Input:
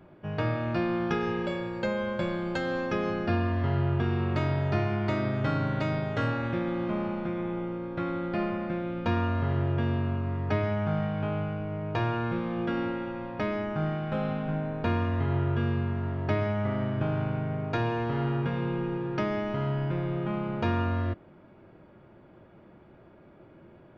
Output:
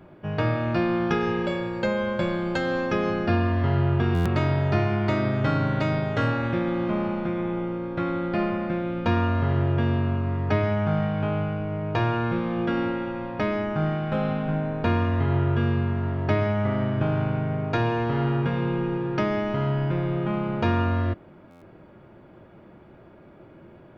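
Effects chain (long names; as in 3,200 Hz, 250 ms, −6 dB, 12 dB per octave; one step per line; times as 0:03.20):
buffer that repeats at 0:04.14/0:21.50, samples 512, times 9
level +4.5 dB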